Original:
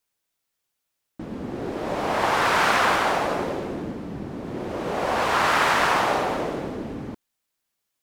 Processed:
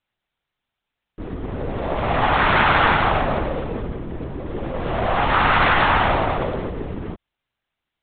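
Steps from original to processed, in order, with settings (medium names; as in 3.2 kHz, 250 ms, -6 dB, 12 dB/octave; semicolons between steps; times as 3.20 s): LPC vocoder at 8 kHz whisper; trim +4 dB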